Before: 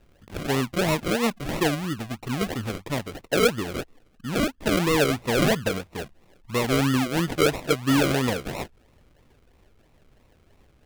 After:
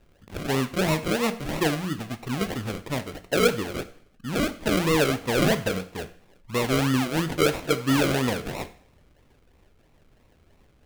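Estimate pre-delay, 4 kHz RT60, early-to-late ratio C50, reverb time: 17 ms, 0.55 s, 15.0 dB, 0.55 s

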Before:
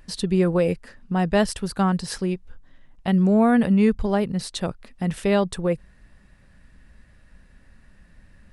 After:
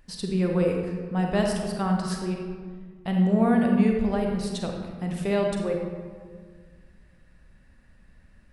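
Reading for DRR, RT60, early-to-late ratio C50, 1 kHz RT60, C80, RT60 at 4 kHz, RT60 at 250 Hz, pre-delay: 1.0 dB, 1.7 s, 2.0 dB, 1.6 s, 4.5 dB, 0.95 s, 2.1 s, 34 ms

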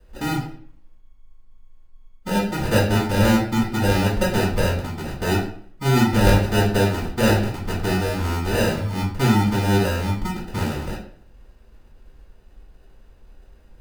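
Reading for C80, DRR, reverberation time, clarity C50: 9.5 dB, -9.0 dB, 0.55 s, 5.0 dB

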